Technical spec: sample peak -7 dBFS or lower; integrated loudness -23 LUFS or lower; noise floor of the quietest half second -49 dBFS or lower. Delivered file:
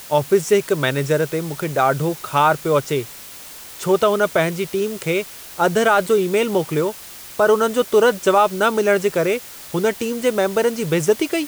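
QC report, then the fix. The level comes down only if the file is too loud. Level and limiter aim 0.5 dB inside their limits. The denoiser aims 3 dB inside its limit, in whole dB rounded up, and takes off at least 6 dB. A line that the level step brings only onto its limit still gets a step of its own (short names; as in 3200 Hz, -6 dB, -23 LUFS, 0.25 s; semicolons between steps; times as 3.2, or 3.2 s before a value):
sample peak -4.5 dBFS: fail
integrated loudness -19.0 LUFS: fail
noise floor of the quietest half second -38 dBFS: fail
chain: denoiser 10 dB, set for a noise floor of -38 dBFS; gain -4.5 dB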